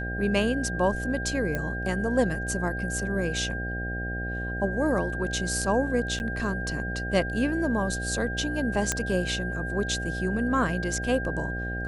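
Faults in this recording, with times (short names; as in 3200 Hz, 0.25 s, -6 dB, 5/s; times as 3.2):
buzz 60 Hz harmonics 13 -33 dBFS
tone 1600 Hz -33 dBFS
1.55 pop -16 dBFS
6.19–6.2 gap 9.9 ms
8.92 pop -9 dBFS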